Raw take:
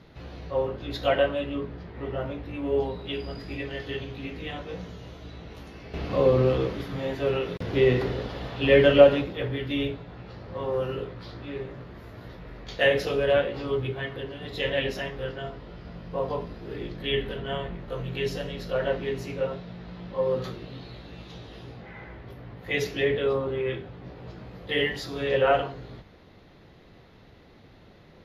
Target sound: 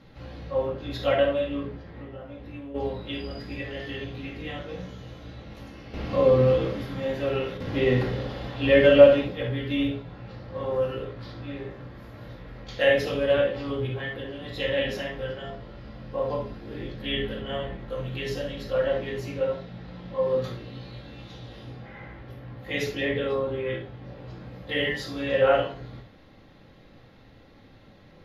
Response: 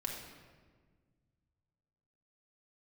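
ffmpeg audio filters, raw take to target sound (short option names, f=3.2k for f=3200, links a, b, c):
-filter_complex "[0:a]asplit=3[a][b][c];[a]afade=t=out:st=1.77:d=0.02[d];[b]acompressor=threshold=-37dB:ratio=12,afade=t=in:st=1.77:d=0.02,afade=t=out:st=2.74:d=0.02[e];[c]afade=t=in:st=2.74:d=0.02[f];[d][e][f]amix=inputs=3:normalize=0[g];[1:a]atrim=start_sample=2205,atrim=end_sample=3528[h];[g][h]afir=irnorm=-1:irlink=0"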